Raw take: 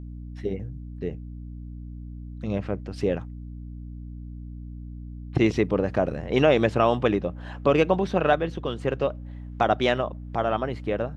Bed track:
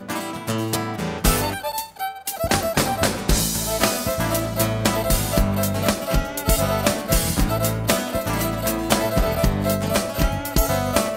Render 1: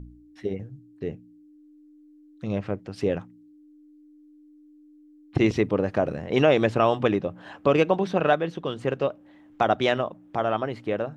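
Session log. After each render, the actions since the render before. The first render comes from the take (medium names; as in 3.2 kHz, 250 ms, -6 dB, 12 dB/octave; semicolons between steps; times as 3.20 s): de-hum 60 Hz, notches 4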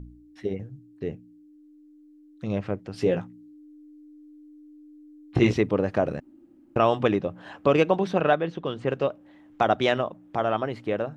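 2.92–5.54 s: doubling 17 ms -4 dB; 6.20–6.76 s: room tone; 8.21–8.90 s: distance through air 83 m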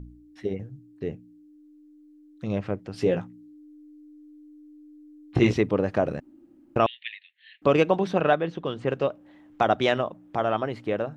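6.86–7.62 s: Chebyshev band-pass 1.8–4.3 kHz, order 5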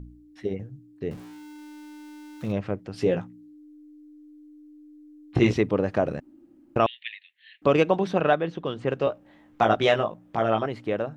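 1.11–2.52 s: jump at every zero crossing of -40.5 dBFS; 9.05–10.66 s: doubling 18 ms -3.5 dB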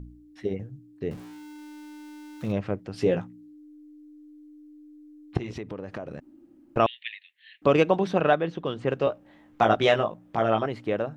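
5.37–6.77 s: compression, threshold -32 dBFS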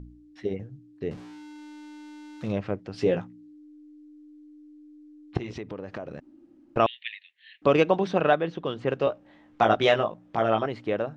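low-pass 5.6 kHz 12 dB/octave; tone controls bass -2 dB, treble +3 dB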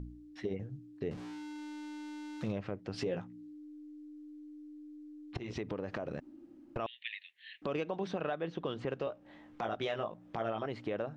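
compression 3:1, threshold -33 dBFS, peak gain reduction 13.5 dB; peak limiter -25 dBFS, peak gain reduction 10 dB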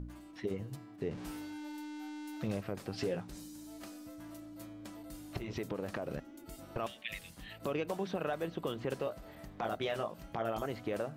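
add bed track -32 dB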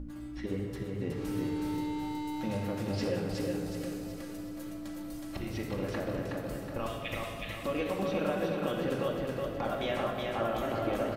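feedback delay 369 ms, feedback 43%, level -3 dB; simulated room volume 3100 m³, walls mixed, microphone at 2.3 m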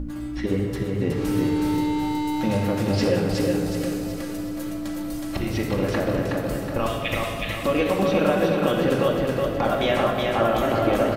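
trim +11 dB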